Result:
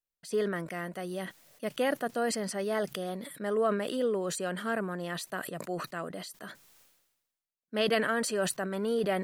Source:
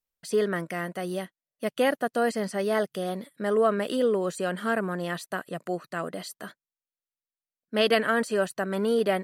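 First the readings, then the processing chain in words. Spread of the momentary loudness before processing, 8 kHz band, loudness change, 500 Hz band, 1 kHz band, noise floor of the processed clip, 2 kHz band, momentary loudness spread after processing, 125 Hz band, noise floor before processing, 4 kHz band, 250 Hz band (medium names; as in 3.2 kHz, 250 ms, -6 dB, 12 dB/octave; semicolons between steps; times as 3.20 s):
11 LU, +3.0 dB, -4.5 dB, -5.0 dB, -5.0 dB, under -85 dBFS, -4.5 dB, 10 LU, -3.5 dB, under -85 dBFS, -3.5 dB, -4.5 dB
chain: decay stretcher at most 53 dB/s; trim -5.5 dB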